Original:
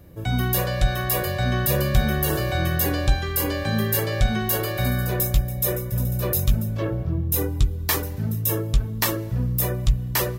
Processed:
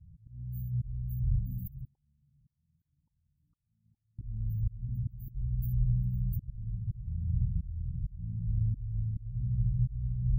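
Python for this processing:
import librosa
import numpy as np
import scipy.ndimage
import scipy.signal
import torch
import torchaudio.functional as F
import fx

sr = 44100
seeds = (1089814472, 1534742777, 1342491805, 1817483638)

y = fx.spec_trails(x, sr, decay_s=1.19)
y = fx.dynamic_eq(y, sr, hz=330.0, q=2.4, threshold_db=-42.0, ratio=4.0, max_db=-8)
y = scipy.signal.sosfilt(scipy.signal.cheby2(4, 80, [830.0, 6400.0], 'bandstop', fs=sr, output='sos'), y)
y = fx.echo_diffused(y, sr, ms=456, feedback_pct=67, wet_db=-5.0)
y = fx.auto_swell(y, sr, attack_ms=488.0)
y = fx.filter_lfo_bandpass(y, sr, shape='saw_up', hz=1.0, low_hz=740.0, high_hz=1600.0, q=6.8, at=(1.85, 4.19))
y = fx.peak_eq(y, sr, hz=650.0, db=-12.5, octaves=0.23)
y = fx.filter_sweep_lowpass(y, sr, from_hz=14000.0, to_hz=250.0, start_s=6.34, end_s=7.37, q=1.6)
y = fx.spec_gate(y, sr, threshold_db=-25, keep='strong')
y = y * librosa.db_to_amplitude(-6.5)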